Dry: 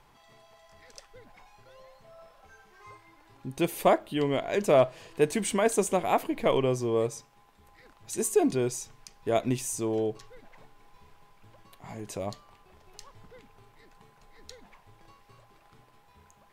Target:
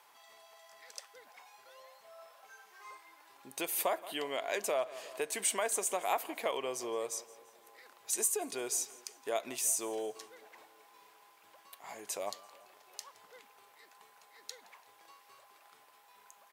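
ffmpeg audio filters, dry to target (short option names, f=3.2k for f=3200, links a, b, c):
-filter_complex "[0:a]highshelf=f=8.3k:g=10,asplit=2[a][b];[b]aecho=0:1:169|338|507:0.075|0.0345|0.0159[c];[a][c]amix=inputs=2:normalize=0,acompressor=threshold=-26dB:ratio=6,highpass=620,asplit=2[d][e];[e]adelay=366,lowpass=f=2k:p=1,volume=-24dB,asplit=2[f][g];[g]adelay=366,lowpass=f=2k:p=1,volume=0.55,asplit=2[h][i];[i]adelay=366,lowpass=f=2k:p=1,volume=0.55,asplit=2[j][k];[k]adelay=366,lowpass=f=2k:p=1,volume=0.55[l];[f][h][j][l]amix=inputs=4:normalize=0[m];[d][m]amix=inputs=2:normalize=0"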